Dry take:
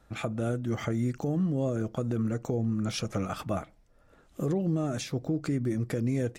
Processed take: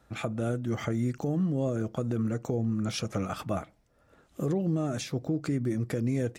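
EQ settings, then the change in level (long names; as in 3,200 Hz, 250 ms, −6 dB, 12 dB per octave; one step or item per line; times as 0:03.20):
high-pass filter 53 Hz
0.0 dB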